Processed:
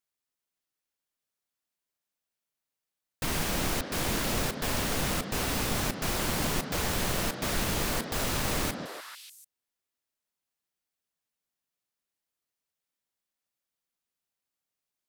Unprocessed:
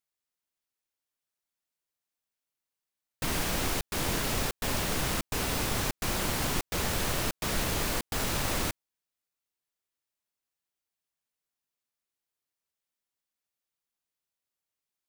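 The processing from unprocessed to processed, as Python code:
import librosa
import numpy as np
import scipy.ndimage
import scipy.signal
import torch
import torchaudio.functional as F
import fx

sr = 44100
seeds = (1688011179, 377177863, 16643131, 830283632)

y = fx.echo_stepped(x, sr, ms=147, hz=210.0, octaves=1.4, feedback_pct=70, wet_db=-1.0)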